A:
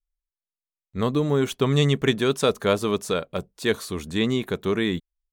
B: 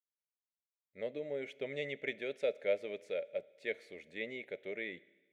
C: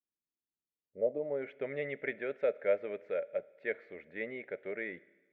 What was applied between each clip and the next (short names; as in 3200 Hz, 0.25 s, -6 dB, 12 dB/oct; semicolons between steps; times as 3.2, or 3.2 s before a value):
double band-pass 1100 Hz, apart 1.9 oct; Schroeder reverb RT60 1.3 s, combs from 26 ms, DRR 20 dB; gain -4.5 dB
low-pass sweep 310 Hz -> 1500 Hz, 0.75–1.47; gain +2 dB